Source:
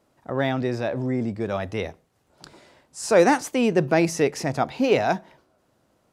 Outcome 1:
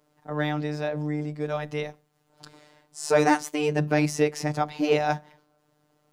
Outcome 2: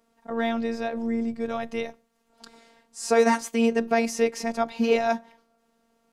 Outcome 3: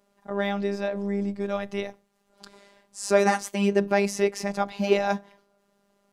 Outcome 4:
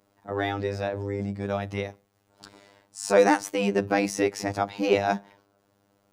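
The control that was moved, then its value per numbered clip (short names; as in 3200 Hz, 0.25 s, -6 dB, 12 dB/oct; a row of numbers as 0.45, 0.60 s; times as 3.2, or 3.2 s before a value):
robotiser, frequency: 150, 230, 200, 100 Hz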